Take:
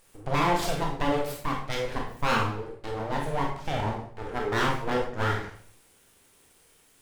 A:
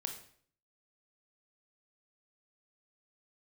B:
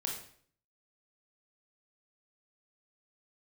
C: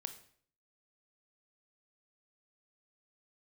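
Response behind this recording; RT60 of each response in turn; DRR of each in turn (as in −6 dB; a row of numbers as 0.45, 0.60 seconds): B; 0.55, 0.55, 0.55 seconds; 4.0, −0.5, 8.5 decibels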